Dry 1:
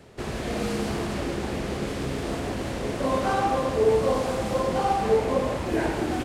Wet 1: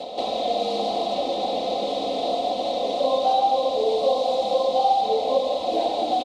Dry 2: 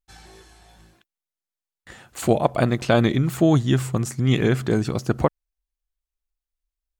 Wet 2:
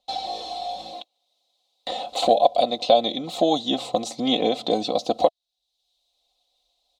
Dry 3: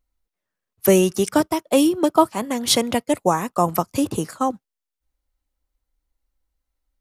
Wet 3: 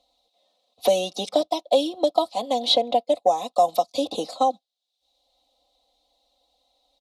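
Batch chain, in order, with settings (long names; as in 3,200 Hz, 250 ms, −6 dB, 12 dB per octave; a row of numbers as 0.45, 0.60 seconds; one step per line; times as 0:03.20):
pair of resonant band-passes 1,600 Hz, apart 2.5 octaves
comb filter 3.9 ms, depth 77%
multiband upward and downward compressor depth 70%
loudness normalisation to −23 LKFS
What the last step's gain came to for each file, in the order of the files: +12.0, +13.0, +8.0 decibels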